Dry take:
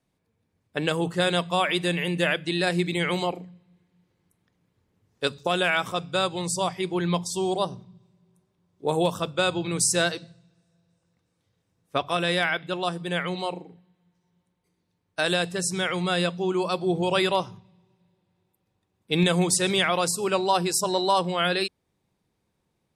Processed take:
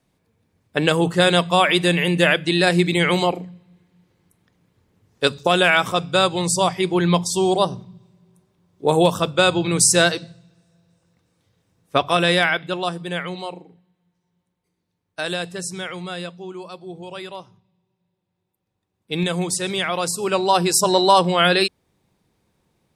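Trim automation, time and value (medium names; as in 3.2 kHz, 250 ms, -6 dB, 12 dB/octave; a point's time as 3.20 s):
12.26 s +7.5 dB
13.52 s -1.5 dB
15.59 s -1.5 dB
16.82 s -11 dB
17.43 s -11 dB
19.12 s -1 dB
19.76 s -1 dB
20.86 s +8 dB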